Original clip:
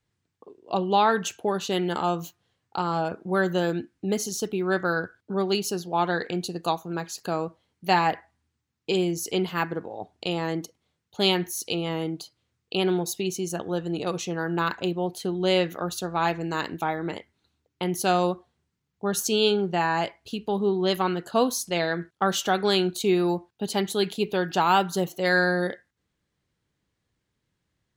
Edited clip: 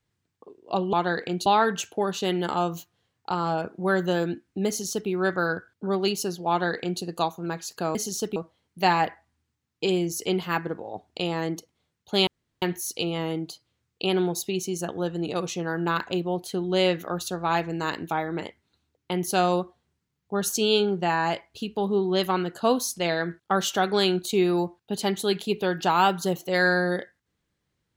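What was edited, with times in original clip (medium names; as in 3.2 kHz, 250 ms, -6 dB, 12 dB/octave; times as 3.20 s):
4.15–4.56 s: copy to 7.42 s
5.96–6.49 s: copy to 0.93 s
11.33 s: insert room tone 0.35 s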